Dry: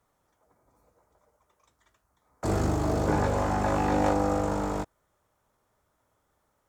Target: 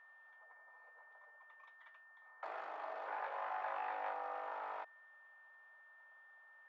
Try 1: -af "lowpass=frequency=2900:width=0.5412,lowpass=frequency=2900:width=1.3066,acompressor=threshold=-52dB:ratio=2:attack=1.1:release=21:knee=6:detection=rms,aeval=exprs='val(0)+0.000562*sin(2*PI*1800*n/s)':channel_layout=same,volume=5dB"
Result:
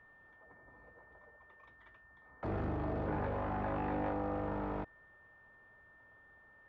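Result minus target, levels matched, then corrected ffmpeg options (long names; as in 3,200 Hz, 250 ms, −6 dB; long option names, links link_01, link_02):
1,000 Hz band −5.0 dB
-af "lowpass=frequency=2900:width=0.5412,lowpass=frequency=2900:width=1.3066,acompressor=threshold=-52dB:ratio=2:attack=1.1:release=21:knee=6:detection=rms,highpass=frequency=710:width=0.5412,highpass=frequency=710:width=1.3066,aeval=exprs='val(0)+0.000562*sin(2*PI*1800*n/s)':channel_layout=same,volume=5dB"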